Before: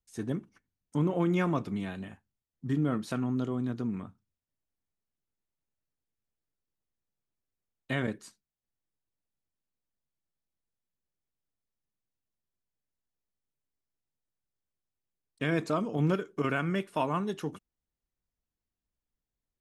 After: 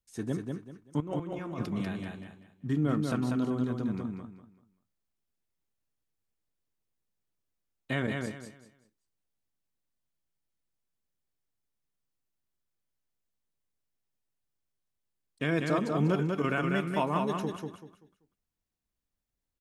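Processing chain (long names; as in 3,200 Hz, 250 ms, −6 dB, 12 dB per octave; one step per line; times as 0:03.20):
0:01.00–0:01.66: compressor whose output falls as the input rises −38 dBFS, ratio −1
repeating echo 193 ms, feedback 28%, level −4 dB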